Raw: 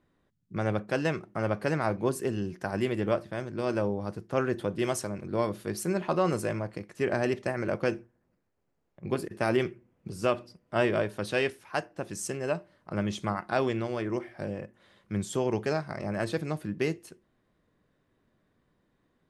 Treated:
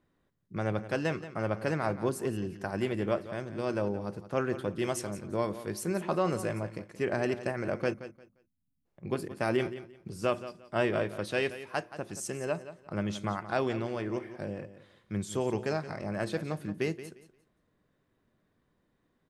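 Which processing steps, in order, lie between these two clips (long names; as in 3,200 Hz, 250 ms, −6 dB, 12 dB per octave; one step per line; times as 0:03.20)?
time-frequency box erased 0:07.94–0:08.85, 290–8,900 Hz
repeating echo 175 ms, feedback 22%, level −13.5 dB
level −2.5 dB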